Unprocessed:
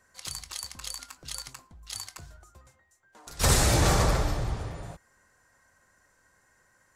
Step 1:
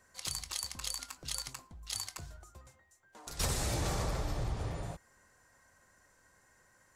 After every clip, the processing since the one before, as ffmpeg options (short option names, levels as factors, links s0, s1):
-af "equalizer=f=1500:t=o:w=0.77:g=-2.5,acompressor=threshold=0.0316:ratio=12"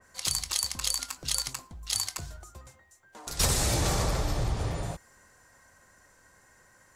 -af "adynamicequalizer=threshold=0.00224:dfrequency=3000:dqfactor=0.7:tfrequency=3000:tqfactor=0.7:attack=5:release=100:ratio=0.375:range=1.5:mode=boostabove:tftype=highshelf,volume=2.11"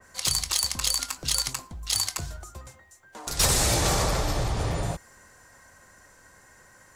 -filter_complex "[0:a]acrossover=split=410[s0][s1];[s0]alimiter=level_in=1.41:limit=0.0631:level=0:latency=1,volume=0.708[s2];[s1]asoftclip=type=tanh:threshold=0.133[s3];[s2][s3]amix=inputs=2:normalize=0,volume=1.88"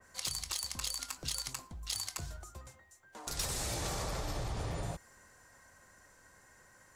-af "acompressor=threshold=0.0501:ratio=10,volume=0.447"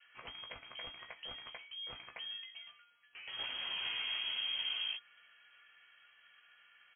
-filter_complex "[0:a]lowpass=f=2800:t=q:w=0.5098,lowpass=f=2800:t=q:w=0.6013,lowpass=f=2800:t=q:w=0.9,lowpass=f=2800:t=q:w=2.563,afreqshift=-3300,asplit=2[s0][s1];[s1]adelay=16,volume=0.501[s2];[s0][s2]amix=inputs=2:normalize=0,volume=0.75"